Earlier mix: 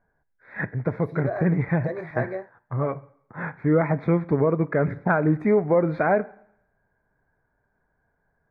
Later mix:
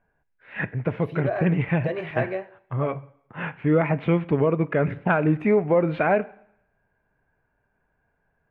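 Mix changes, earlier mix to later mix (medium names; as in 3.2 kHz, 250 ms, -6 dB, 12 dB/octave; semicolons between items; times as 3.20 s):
second voice: send on; master: remove Butterworth band-stop 2.9 kHz, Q 1.5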